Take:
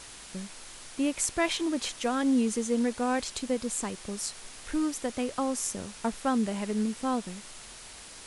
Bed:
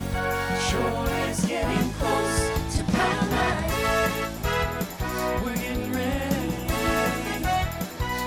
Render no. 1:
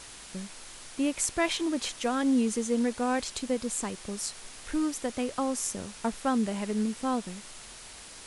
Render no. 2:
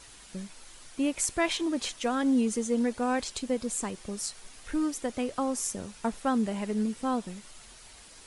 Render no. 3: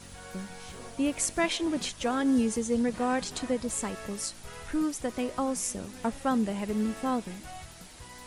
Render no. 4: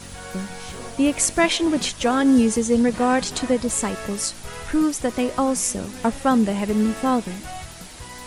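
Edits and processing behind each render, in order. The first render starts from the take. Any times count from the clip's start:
nothing audible
denoiser 7 dB, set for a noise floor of -47 dBFS
add bed -20.5 dB
gain +9 dB

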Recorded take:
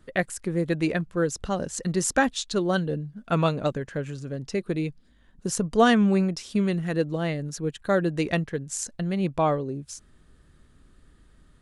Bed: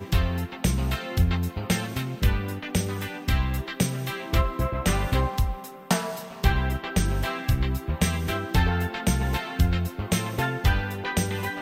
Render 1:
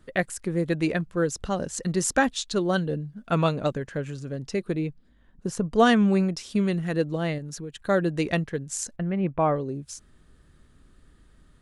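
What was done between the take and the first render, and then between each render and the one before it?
4.75–5.76 high shelf 3000 Hz -10 dB; 7.38–7.8 compressor, threshold -32 dBFS; 8.96–9.56 LPF 2400 Hz 24 dB/oct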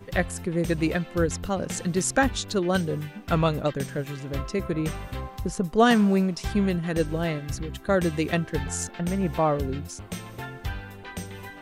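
add bed -10.5 dB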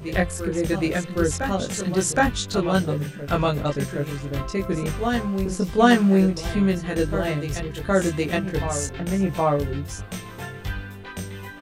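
doubler 21 ms -2 dB; reverse echo 0.768 s -8.5 dB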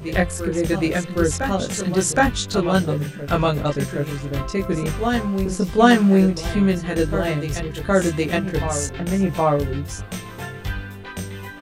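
gain +2.5 dB; limiter -1 dBFS, peak gain reduction 1 dB

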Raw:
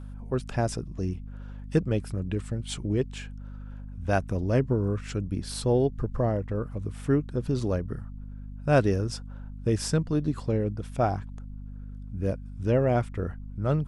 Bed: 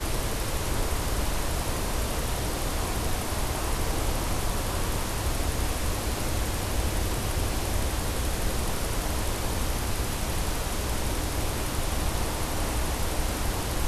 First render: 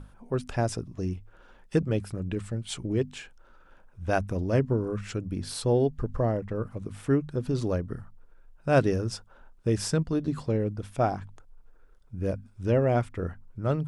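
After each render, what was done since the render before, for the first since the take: notches 50/100/150/200/250 Hz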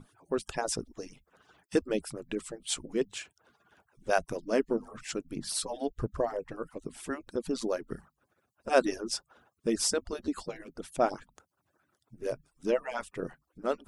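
median-filter separation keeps percussive; tone controls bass -3 dB, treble +6 dB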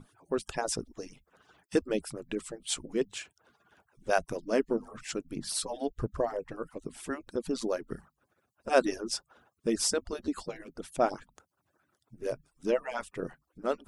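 nothing audible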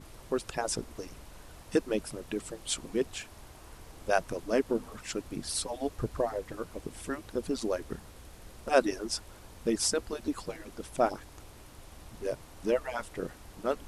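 add bed -22 dB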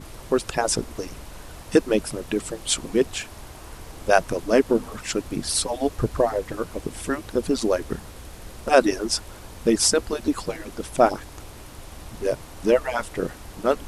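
gain +9.5 dB; limiter -2 dBFS, peak gain reduction 2.5 dB

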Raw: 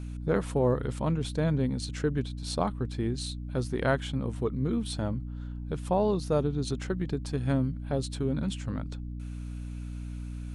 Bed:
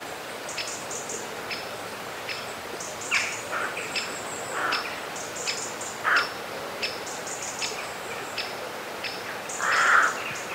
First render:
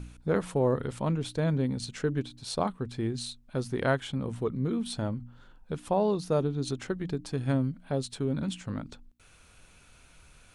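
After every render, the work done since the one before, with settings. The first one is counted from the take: de-hum 60 Hz, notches 5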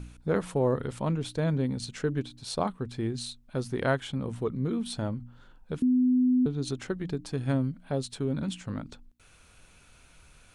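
5.82–6.46 bleep 252 Hz -19.5 dBFS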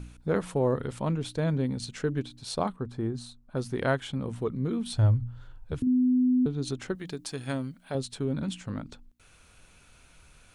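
2.76–3.57 resonant high shelf 1700 Hz -7.5 dB, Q 1.5; 4.92–5.87 resonant low shelf 140 Hz +8.5 dB, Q 3; 6.95–7.95 tilt +2.5 dB/oct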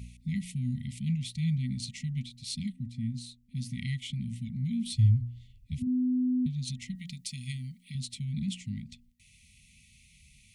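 FFT band-reject 250–1900 Hz; HPF 46 Hz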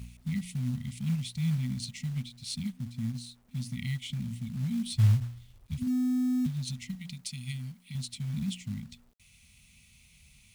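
companded quantiser 6-bit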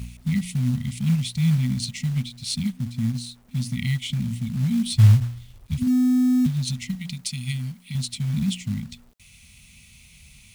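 gain +9 dB

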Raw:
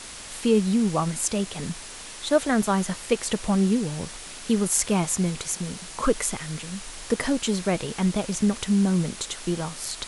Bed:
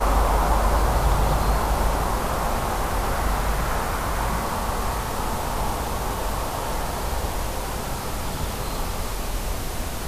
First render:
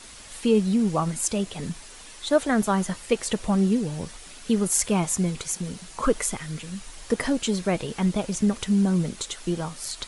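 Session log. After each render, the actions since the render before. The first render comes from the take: denoiser 7 dB, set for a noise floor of -40 dBFS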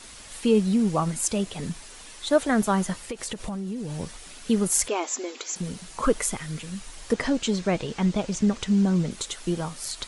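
3.09–4 compressor 12:1, threshold -28 dBFS; 4.88–5.56 brick-wall FIR band-pass 240–7700 Hz; 7.13–9.11 LPF 7700 Hz 24 dB/oct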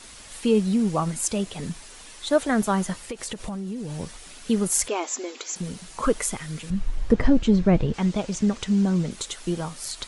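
6.7–7.94 RIAA curve playback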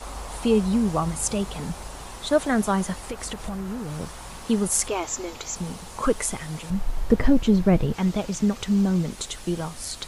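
add bed -16.5 dB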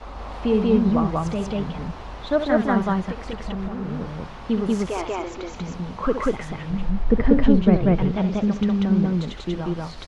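air absorption 250 m; loudspeakers at several distances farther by 23 m -9 dB, 65 m 0 dB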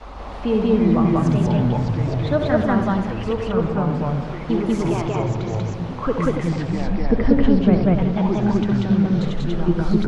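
tape echo 93 ms, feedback 77%, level -7.5 dB, low-pass 1200 Hz; echoes that change speed 0.182 s, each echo -5 st, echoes 2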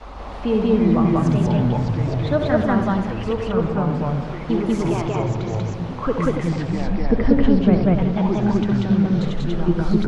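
nothing audible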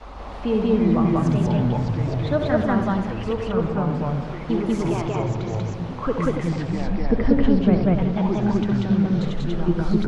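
gain -2 dB

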